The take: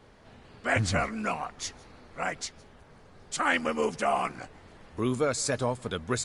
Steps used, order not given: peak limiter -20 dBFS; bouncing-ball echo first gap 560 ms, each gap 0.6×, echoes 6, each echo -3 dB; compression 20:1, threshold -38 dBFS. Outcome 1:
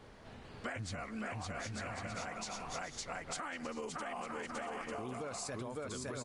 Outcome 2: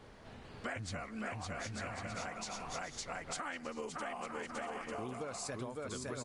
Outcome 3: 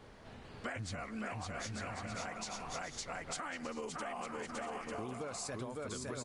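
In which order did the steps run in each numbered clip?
bouncing-ball echo > peak limiter > compression; bouncing-ball echo > compression > peak limiter; peak limiter > bouncing-ball echo > compression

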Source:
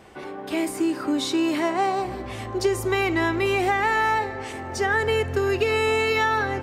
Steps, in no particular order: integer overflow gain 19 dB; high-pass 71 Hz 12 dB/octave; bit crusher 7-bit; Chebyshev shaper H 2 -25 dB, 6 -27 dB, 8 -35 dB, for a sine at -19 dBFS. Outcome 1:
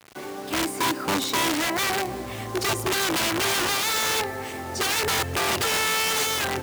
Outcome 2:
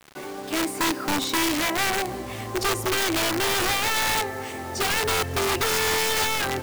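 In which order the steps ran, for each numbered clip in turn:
integer overflow > Chebyshev shaper > bit crusher > high-pass; Chebyshev shaper > high-pass > integer overflow > bit crusher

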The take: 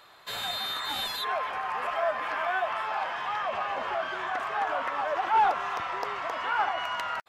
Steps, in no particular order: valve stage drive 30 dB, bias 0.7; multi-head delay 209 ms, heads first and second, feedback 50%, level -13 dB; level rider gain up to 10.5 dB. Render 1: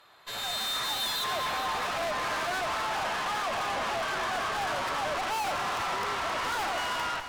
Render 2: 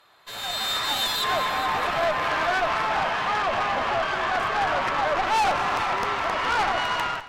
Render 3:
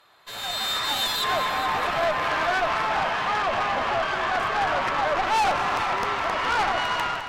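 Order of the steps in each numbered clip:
level rider > valve stage > multi-head delay; valve stage > multi-head delay > level rider; valve stage > level rider > multi-head delay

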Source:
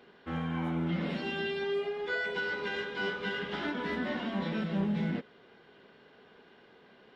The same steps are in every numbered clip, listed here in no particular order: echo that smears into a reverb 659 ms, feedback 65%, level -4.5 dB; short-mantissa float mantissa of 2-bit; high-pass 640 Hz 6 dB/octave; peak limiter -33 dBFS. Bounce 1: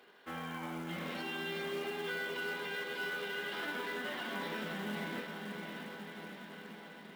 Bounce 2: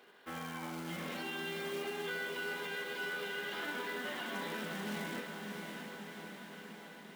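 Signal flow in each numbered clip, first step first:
high-pass > peak limiter > echo that smears into a reverb > short-mantissa float; short-mantissa float > high-pass > peak limiter > echo that smears into a reverb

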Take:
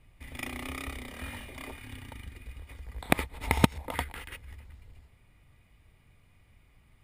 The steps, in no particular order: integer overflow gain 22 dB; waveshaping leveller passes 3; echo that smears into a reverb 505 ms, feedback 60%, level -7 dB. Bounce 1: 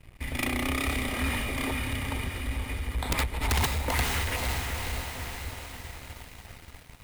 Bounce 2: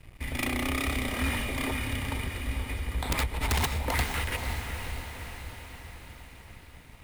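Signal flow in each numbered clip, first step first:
integer overflow > echo that smears into a reverb > waveshaping leveller; integer overflow > waveshaping leveller > echo that smears into a reverb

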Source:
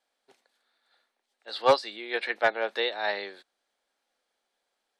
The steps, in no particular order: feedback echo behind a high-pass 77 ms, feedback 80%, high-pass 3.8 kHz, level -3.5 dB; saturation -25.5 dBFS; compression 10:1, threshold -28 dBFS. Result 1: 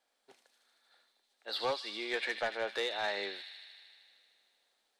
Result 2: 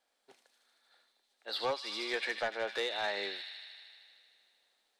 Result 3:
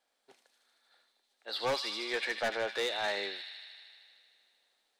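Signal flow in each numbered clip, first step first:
compression > feedback echo behind a high-pass > saturation; feedback echo behind a high-pass > compression > saturation; feedback echo behind a high-pass > saturation > compression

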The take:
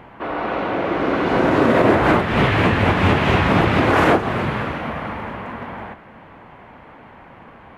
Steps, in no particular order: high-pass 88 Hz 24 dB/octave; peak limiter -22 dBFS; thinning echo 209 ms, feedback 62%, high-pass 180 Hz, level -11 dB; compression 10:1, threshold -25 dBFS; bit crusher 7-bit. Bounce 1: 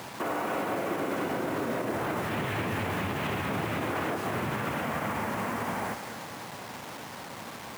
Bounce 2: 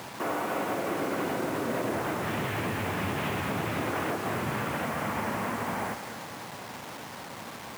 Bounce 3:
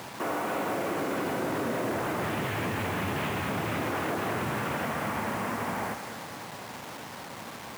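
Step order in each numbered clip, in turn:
compression > thinning echo > bit crusher > high-pass > peak limiter; compression > thinning echo > peak limiter > bit crusher > high-pass; thinning echo > peak limiter > compression > bit crusher > high-pass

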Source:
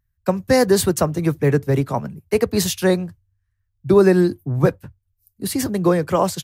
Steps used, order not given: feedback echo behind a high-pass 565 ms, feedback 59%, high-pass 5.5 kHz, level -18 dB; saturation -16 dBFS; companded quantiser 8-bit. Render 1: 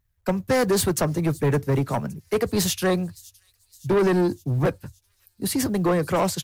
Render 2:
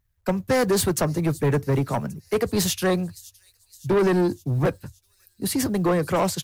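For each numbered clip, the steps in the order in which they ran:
companded quantiser > saturation > feedback echo behind a high-pass; companded quantiser > feedback echo behind a high-pass > saturation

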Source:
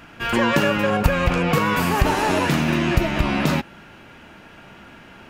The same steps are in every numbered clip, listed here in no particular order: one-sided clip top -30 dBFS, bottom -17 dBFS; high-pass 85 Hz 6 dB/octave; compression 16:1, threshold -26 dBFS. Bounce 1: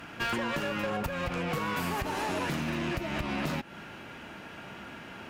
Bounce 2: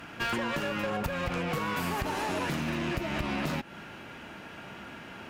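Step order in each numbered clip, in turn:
compression > high-pass > one-sided clip; high-pass > compression > one-sided clip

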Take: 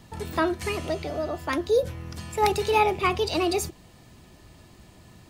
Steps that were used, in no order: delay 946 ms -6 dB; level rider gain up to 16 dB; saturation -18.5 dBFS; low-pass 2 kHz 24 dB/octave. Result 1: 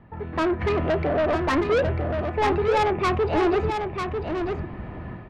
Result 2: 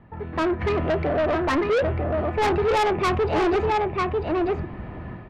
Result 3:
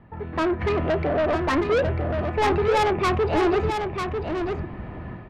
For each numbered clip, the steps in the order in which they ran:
level rider > low-pass > saturation > delay; low-pass > level rider > delay > saturation; low-pass > level rider > saturation > delay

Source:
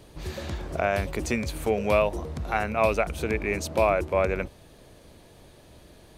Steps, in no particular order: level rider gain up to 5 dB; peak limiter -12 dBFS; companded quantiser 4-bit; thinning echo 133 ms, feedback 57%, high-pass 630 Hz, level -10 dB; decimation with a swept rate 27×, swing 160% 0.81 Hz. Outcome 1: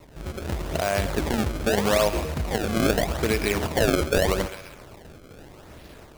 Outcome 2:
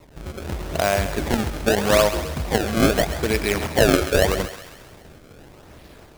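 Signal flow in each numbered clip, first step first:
level rider > peak limiter > companded quantiser > thinning echo > decimation with a swept rate; decimation with a swept rate > peak limiter > level rider > companded quantiser > thinning echo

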